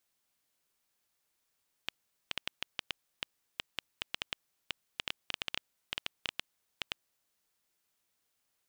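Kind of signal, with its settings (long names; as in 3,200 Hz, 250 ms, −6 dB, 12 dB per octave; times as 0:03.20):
Geiger counter clicks 6 per second −15 dBFS 5.37 s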